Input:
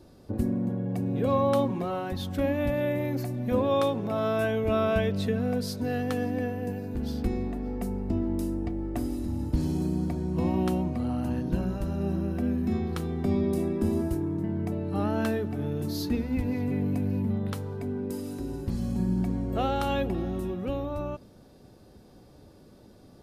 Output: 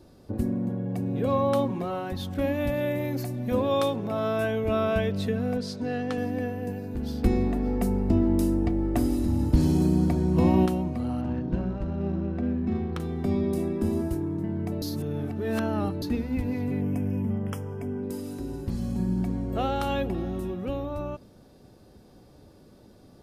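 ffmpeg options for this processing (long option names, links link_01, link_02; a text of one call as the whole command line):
ffmpeg -i in.wav -filter_complex "[0:a]asettb=1/sr,asplit=3[link_01][link_02][link_03];[link_01]atrim=end=2.344[link_04];[link_02]atrim=start=2.34:end=3.96,asetpts=PTS-STARTPTS,afade=type=in:duration=0.004:curve=qsin,afade=type=out:start_time=1.616:duration=0.004:curve=qsin,adynamicequalizer=threshold=0.00562:dfrequency=2900:dqfactor=0.7:tfrequency=2900:tqfactor=0.7:attack=5:release=100:ratio=0.375:range=2:mode=boostabove:tftype=highshelf[link_05];[link_03]atrim=start=3.956[link_06];[link_04][link_05]acrossfade=duration=0.004:curve1=hsin:curve2=qsin[link_07];[link_07][link_06]acrossfade=duration=0.004:curve1=qsin:curve2=hsin,asettb=1/sr,asplit=3[link_08][link_09][link_10];[link_08]atrim=end=5.574[link_11];[link_09]atrim=start=5.57:end=6.18,asetpts=PTS-STARTPTS,afade=type=in:duration=0.004:curve=qsin,afade=type=out:start_time=0.606:duration=0.004:curve=qsin,highpass=120,lowpass=6600[link_12];[link_10]atrim=start=6.176[link_13];[link_11][link_12]acrossfade=duration=0.004:curve1=hsin:curve2=qsin[link_14];[link_14][link_13]acrossfade=duration=0.004:curve1=qsin:curve2=hsin,asettb=1/sr,asplit=3[link_15][link_16][link_17];[link_15]atrim=end=7.234[link_18];[link_16]atrim=start=7.23:end=10.66,asetpts=PTS-STARTPTS,afade=type=in:duration=0.004:curve=qsin,afade=type=out:start_time=3.426:duration=0.004:curve=qsin,acontrast=56[link_19];[link_17]atrim=start=10.656[link_20];[link_18][link_19]acrossfade=duration=0.004:curve1=hsin:curve2=qsin[link_21];[link_21][link_20]acrossfade=duration=0.004:curve1=qsin:curve2=hsin,asettb=1/sr,asplit=3[link_22][link_23][link_24];[link_22]atrim=end=11.214[link_25];[link_23]atrim=start=11.21:end=13,asetpts=PTS-STARTPTS,afade=type=in:duration=0.004:curve=qsin,afade=type=out:start_time=1.786:duration=0.004:curve=qsin,adynamicsmooth=sensitivity=7:basefreq=1700[link_26];[link_24]atrim=start=12.996[link_27];[link_25][link_26]acrossfade=duration=0.004:curve1=hsin:curve2=qsin[link_28];[link_28][link_27]acrossfade=duration=0.004:curve1=qsin:curve2=hsin,asettb=1/sr,asplit=3[link_29][link_30][link_31];[link_29]atrim=end=16.814[link_32];[link_30]atrim=start=16.81:end=18.03,asetpts=PTS-STARTPTS,afade=type=in:duration=0.004:curve=qsin,afade=type=out:start_time=1.216:duration=0.004:curve=qsin,asuperstop=centerf=4100:order=20:qfactor=2.6[link_33];[link_31]atrim=start=18.026[link_34];[link_32][link_33]acrossfade=duration=0.004:curve1=hsin:curve2=qsin[link_35];[link_35][link_34]acrossfade=duration=0.004:curve1=qsin:curve2=hsin,asplit=3[link_36][link_37][link_38];[link_36]atrim=end=14.822[link_39];[link_37]atrim=start=14.818:end=16.022,asetpts=PTS-STARTPTS,areverse[link_40];[link_38]atrim=start=16.018[link_41];[link_39][link_40]acrossfade=duration=0.004:curve1=hsin:curve2=hsin[link_42];[link_42][link_41]acrossfade=duration=0.004:curve1=hsin:curve2=hsin" out.wav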